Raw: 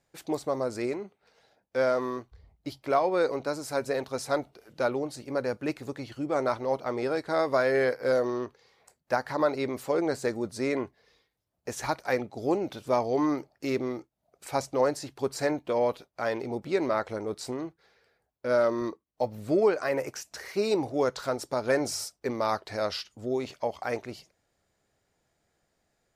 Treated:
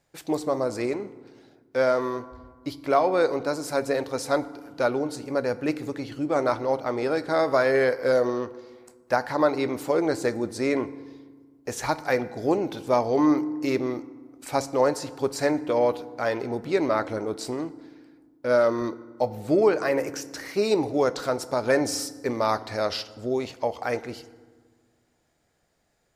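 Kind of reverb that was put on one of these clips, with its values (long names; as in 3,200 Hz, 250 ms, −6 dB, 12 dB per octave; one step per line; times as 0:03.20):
feedback delay network reverb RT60 1.5 s, low-frequency decay 1.5×, high-frequency decay 0.55×, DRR 14 dB
level +3.5 dB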